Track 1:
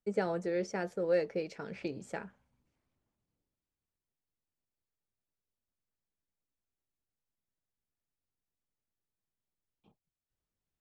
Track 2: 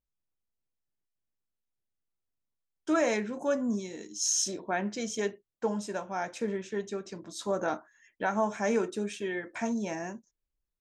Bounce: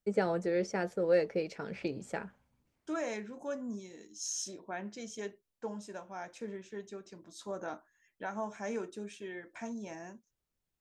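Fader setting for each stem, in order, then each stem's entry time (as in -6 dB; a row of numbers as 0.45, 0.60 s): +2.0, -9.5 dB; 0.00, 0.00 s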